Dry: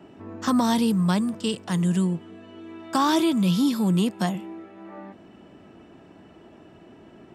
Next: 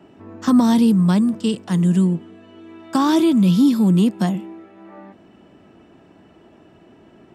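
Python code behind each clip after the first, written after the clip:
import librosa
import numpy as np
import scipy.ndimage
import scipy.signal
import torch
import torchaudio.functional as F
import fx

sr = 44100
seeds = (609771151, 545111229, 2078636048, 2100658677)

y = fx.dynamic_eq(x, sr, hz=240.0, q=0.85, threshold_db=-36.0, ratio=4.0, max_db=8)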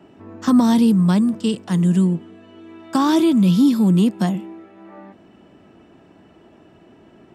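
y = x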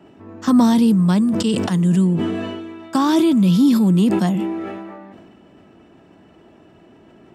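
y = fx.sustainer(x, sr, db_per_s=29.0)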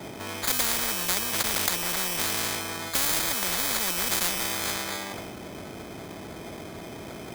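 y = fx.sample_hold(x, sr, seeds[0], rate_hz=2800.0, jitter_pct=0)
y = fx.spectral_comp(y, sr, ratio=10.0)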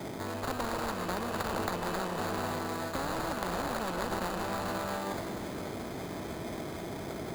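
y = scipy.ndimage.median_filter(x, 25, mode='constant')
y = fx.echo_alternate(y, sr, ms=141, hz=1300.0, feedback_pct=82, wet_db=-8.0)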